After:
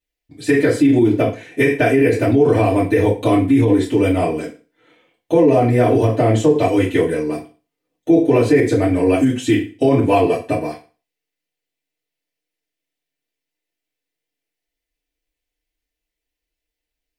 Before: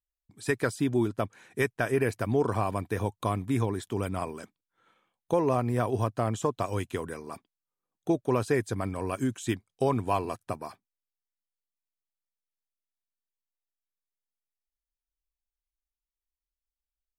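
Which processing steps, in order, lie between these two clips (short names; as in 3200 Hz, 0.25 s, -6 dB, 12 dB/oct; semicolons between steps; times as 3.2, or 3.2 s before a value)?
band shelf 1100 Hz -12.5 dB 1.1 oct; FDN reverb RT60 0.34 s, low-frequency decay 1×, high-frequency decay 0.95×, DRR -9.5 dB; limiter -11.5 dBFS, peak gain reduction 9.5 dB; tone controls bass -6 dB, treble -11 dB; gain +8.5 dB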